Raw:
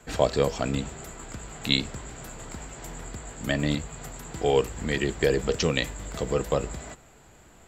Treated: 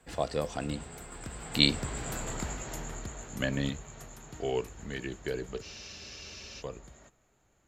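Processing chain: Doppler pass-by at 2.19 s, 22 m/s, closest 10 m; spectral freeze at 5.64 s, 0.96 s; trim +4.5 dB

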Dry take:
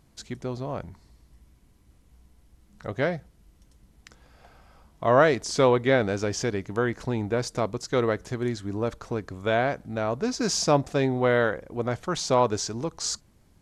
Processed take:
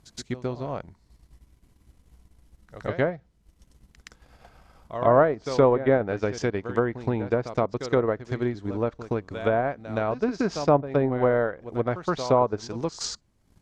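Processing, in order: transient shaper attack +4 dB, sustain -9 dB; pre-echo 120 ms -13 dB; low-pass that closes with the level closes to 1.2 kHz, closed at -18 dBFS

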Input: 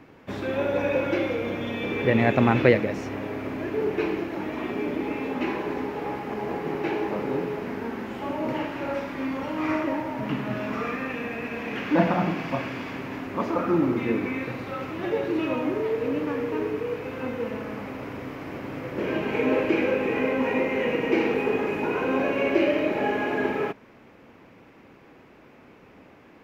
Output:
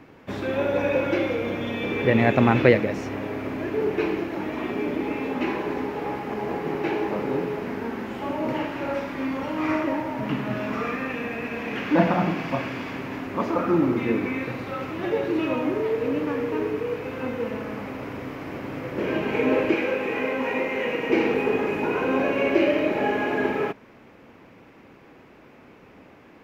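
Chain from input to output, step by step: 19.74–21.10 s: bass shelf 390 Hz -7.5 dB; trim +1.5 dB

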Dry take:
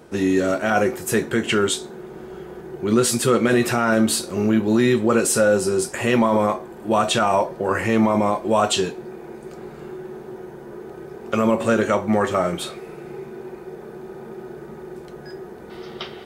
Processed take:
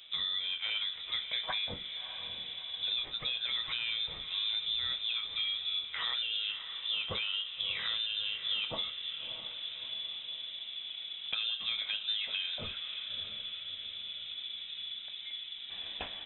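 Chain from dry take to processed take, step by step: compression, threshold -26 dBFS, peak gain reduction 13 dB; echo that smears into a reverb 640 ms, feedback 51%, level -10.5 dB; frequency inversion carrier 3.8 kHz; trim -6.5 dB

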